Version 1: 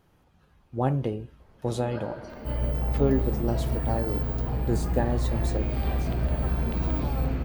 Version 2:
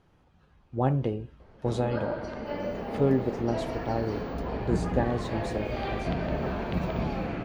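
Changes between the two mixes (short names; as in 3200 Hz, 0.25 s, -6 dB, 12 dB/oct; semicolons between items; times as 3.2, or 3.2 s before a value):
first sound +5.5 dB; second sound: add HPF 390 Hz 24 dB/oct; master: add air absorption 63 m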